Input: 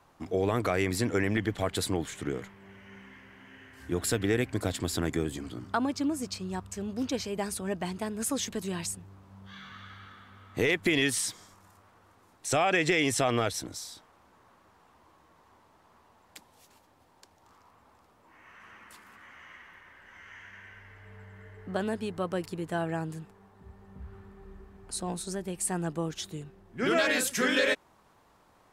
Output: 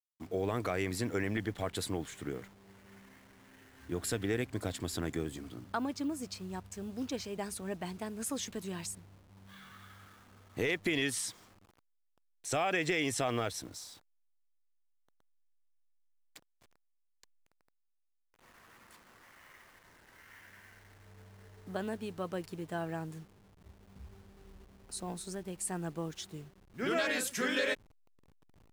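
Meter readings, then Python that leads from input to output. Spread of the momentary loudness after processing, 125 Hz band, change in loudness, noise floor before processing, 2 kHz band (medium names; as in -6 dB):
22 LU, -6.0 dB, -6.0 dB, -63 dBFS, -6.0 dB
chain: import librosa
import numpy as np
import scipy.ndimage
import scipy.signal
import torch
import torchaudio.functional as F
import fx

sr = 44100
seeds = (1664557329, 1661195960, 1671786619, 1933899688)

y = fx.delta_hold(x, sr, step_db=-49.5)
y = y * librosa.db_to_amplitude(-6.0)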